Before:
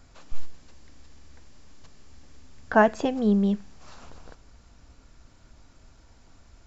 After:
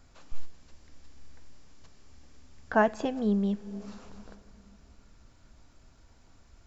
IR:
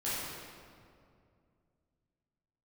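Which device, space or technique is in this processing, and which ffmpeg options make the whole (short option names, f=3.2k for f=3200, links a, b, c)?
ducked reverb: -filter_complex "[0:a]asplit=3[a][b][c];[1:a]atrim=start_sample=2205[d];[b][d]afir=irnorm=-1:irlink=0[e];[c]apad=whole_len=293713[f];[e][f]sidechaincompress=threshold=-35dB:ratio=8:attack=16:release=210,volume=-16.5dB[g];[a][g]amix=inputs=2:normalize=0,volume=-5dB"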